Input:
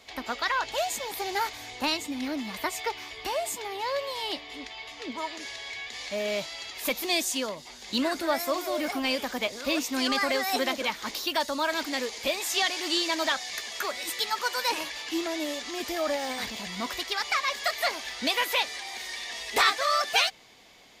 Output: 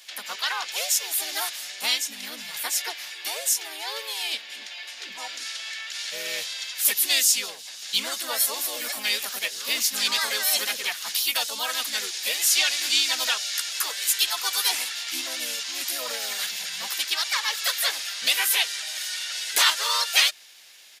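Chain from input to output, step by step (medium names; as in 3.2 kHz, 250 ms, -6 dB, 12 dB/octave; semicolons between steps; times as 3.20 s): differentiator; harmony voices -4 st 0 dB; trim +8.5 dB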